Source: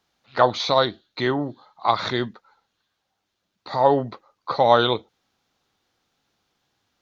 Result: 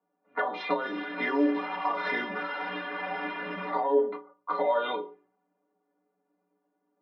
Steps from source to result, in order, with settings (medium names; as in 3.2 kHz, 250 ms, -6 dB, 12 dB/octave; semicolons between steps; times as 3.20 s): 0.81–3.70 s: one-bit delta coder 32 kbps, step -28 dBFS; reverberation RT60 0.35 s, pre-delay 3 ms, DRR 1.5 dB; peak limiter -2 dBFS, peak gain reduction 10 dB; three-band isolator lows -23 dB, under 180 Hz, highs -21 dB, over 3.3 kHz; compression 6:1, threshold -17 dBFS, peak gain reduction 10 dB; level-controlled noise filter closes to 670 Hz, open at -16 dBFS; inharmonic resonator 87 Hz, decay 0.46 s, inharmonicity 0.03; trim +4.5 dB